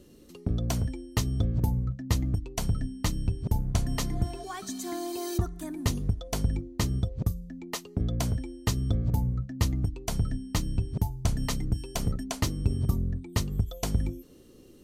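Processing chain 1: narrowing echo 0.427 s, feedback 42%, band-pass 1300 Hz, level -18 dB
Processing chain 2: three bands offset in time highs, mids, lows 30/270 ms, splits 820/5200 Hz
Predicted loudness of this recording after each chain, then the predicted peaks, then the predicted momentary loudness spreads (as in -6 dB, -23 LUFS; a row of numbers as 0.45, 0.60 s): -31.0, -31.0 LUFS; -13.0, -12.5 dBFS; 5, 6 LU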